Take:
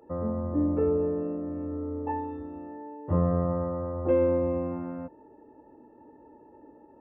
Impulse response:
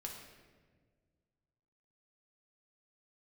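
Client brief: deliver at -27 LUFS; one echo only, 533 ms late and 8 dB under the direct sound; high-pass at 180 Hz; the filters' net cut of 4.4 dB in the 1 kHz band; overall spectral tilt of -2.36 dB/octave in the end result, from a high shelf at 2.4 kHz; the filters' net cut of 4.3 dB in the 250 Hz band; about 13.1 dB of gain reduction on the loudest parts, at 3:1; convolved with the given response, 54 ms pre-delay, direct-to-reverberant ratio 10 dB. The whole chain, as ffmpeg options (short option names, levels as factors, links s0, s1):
-filter_complex "[0:a]highpass=180,equalizer=f=250:t=o:g=-4,equalizer=f=1000:t=o:g=-6,highshelf=f=2400:g=5,acompressor=threshold=0.01:ratio=3,aecho=1:1:533:0.398,asplit=2[s0][s1];[1:a]atrim=start_sample=2205,adelay=54[s2];[s1][s2]afir=irnorm=-1:irlink=0,volume=0.422[s3];[s0][s3]amix=inputs=2:normalize=0,volume=4.47"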